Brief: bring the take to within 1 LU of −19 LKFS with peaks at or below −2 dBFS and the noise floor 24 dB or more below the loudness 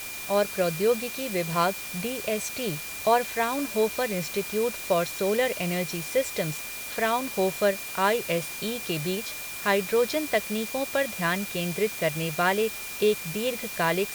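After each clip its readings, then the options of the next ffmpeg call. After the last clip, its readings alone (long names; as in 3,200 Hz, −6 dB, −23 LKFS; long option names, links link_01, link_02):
interfering tone 2,400 Hz; level of the tone −39 dBFS; background noise floor −37 dBFS; target noise floor −51 dBFS; integrated loudness −27.0 LKFS; sample peak −9.0 dBFS; target loudness −19.0 LKFS
→ -af "bandreject=frequency=2400:width=30"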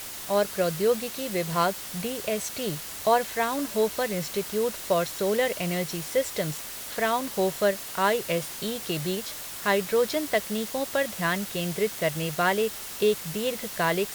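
interfering tone none found; background noise floor −38 dBFS; target noise floor −51 dBFS
→ -af "afftdn=noise_reduction=13:noise_floor=-38"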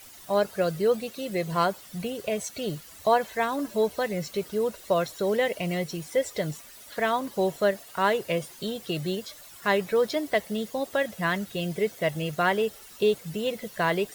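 background noise floor −48 dBFS; target noise floor −52 dBFS
→ -af "afftdn=noise_reduction=6:noise_floor=-48"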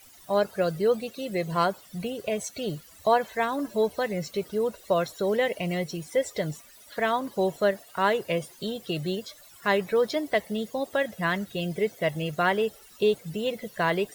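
background noise floor −52 dBFS; integrated loudness −28.0 LKFS; sample peak −9.0 dBFS; target loudness −19.0 LKFS
→ -af "volume=9dB,alimiter=limit=-2dB:level=0:latency=1"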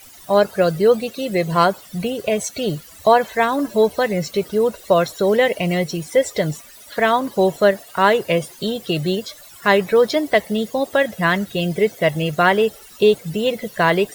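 integrated loudness −19.0 LKFS; sample peak −2.0 dBFS; background noise floor −43 dBFS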